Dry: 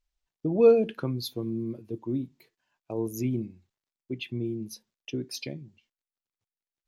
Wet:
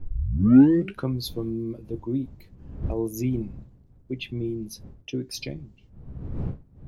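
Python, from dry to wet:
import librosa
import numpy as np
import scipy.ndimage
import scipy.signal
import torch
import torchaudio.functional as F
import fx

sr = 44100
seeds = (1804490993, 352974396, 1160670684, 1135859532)

y = fx.tape_start_head(x, sr, length_s=1.01)
y = fx.dmg_wind(y, sr, seeds[0], corner_hz=120.0, level_db=-41.0)
y = fx.doubler(y, sr, ms=15.0, db=-13.5)
y = y * 10.0 ** (2.0 / 20.0)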